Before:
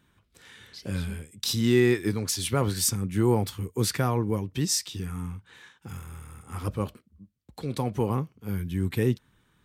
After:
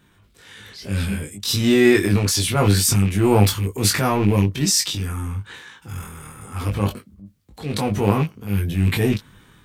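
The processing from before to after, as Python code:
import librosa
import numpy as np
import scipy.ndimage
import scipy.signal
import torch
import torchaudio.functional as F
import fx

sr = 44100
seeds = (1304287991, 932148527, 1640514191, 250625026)

y = fx.rattle_buzz(x, sr, strikes_db=-30.0, level_db=-31.0)
y = fx.transient(y, sr, attack_db=-7, sustain_db=7)
y = fx.room_early_taps(y, sr, ms=(20, 30), db=(-3.5, -10.5))
y = y * librosa.db_to_amplitude(6.5)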